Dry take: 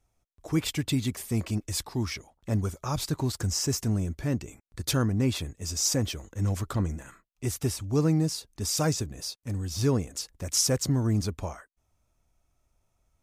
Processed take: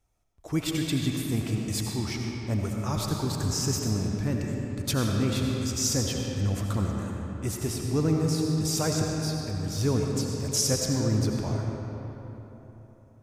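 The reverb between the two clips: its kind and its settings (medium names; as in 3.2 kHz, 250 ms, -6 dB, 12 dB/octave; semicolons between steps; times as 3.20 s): algorithmic reverb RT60 3.7 s, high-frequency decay 0.6×, pre-delay 45 ms, DRR 0 dB; trim -1.5 dB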